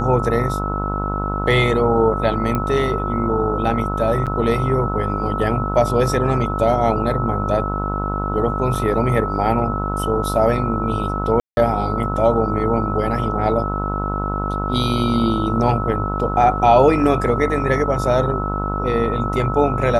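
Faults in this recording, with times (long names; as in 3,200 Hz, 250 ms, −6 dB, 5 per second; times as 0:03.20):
mains buzz 50 Hz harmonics 29 −24 dBFS
whistle 1,300 Hz −25 dBFS
0:02.55: click −9 dBFS
0:04.26–0:04.27: drop-out 7.2 ms
0:08.75: drop-out 4.1 ms
0:11.40–0:11.57: drop-out 171 ms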